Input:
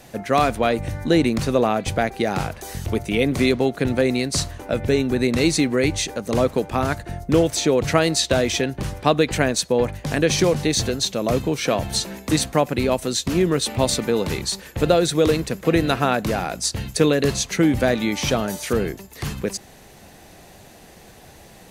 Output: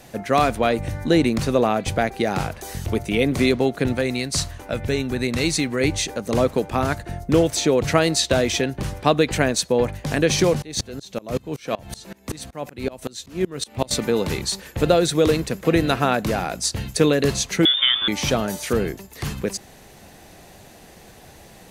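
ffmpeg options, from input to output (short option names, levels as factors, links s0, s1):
-filter_complex "[0:a]asettb=1/sr,asplit=3[s0][s1][s2];[s0]atrim=end=3.934[s3];[s1]atrim=start=3.93:end=5.81,asetpts=PTS-STARTPTS,afade=t=in:d=0.004:c=qsin,afade=t=out:st=1.876:d=0.004:c=qsin,equalizer=f=360:t=o:w=2.2:g=-5[s4];[s2]atrim=start=5.806[s5];[s3][s4]acrossfade=d=0.004:c1=hsin:c2=qsin[s6];[s6][s5]acrossfade=d=0.004:c1=qsin:c2=hsin,asettb=1/sr,asplit=3[s7][s8][s9];[s7]atrim=end=10.624[s10];[s8]atrim=start=10.62:end=13.91,asetpts=PTS-STARTPTS,afade=t=in:d=0.004:c=qsin,afade=t=out:st=3.286:d=0.004:c=qsin,aeval=exprs='val(0)*pow(10,-26*if(lt(mod(-5.3*n/s,1),2*abs(-5.3)/1000),1-mod(-5.3*n/s,1)/(2*abs(-5.3)/1000),(mod(-5.3*n/s,1)-2*abs(-5.3)/1000)/(1-2*abs(-5.3)/1000))/20)':c=same[s11];[s9]atrim=start=13.906[s12];[s10][s11]acrossfade=d=0.004:c1=hsin:c2=qsin[s13];[s13][s12]acrossfade=d=0.004:c1=qsin:c2=hsin,asettb=1/sr,asplit=3[s14][s15][s16];[s14]atrim=end=17.654[s17];[s15]atrim=start=17.65:end=18.08,asetpts=PTS-STARTPTS,afade=t=in:d=0.004:c=qsin,afade=t=out:st=0.426:d=0.004:c=qsin,lowpass=f=3100:t=q:w=0.5098,lowpass=f=3100:t=q:w=0.6013,lowpass=f=3100:t=q:w=0.9,lowpass=f=3100:t=q:w=2.563,afreqshift=-3700[s18];[s16]atrim=start=18.076[s19];[s17][s18]acrossfade=d=0.004:c1=hsin:c2=qsin[s20];[s20][s19]acrossfade=d=0.004:c1=qsin:c2=hsin"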